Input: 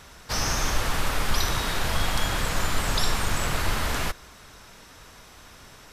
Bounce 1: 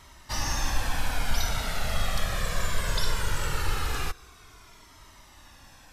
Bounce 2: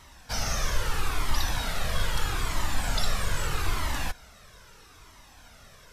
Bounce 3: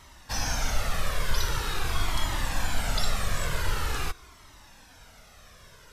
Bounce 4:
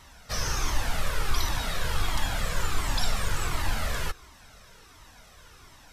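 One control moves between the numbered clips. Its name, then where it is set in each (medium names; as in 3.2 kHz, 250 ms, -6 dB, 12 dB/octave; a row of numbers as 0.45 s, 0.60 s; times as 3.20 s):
Shepard-style flanger, rate: 0.2 Hz, 0.78 Hz, 0.45 Hz, 1.4 Hz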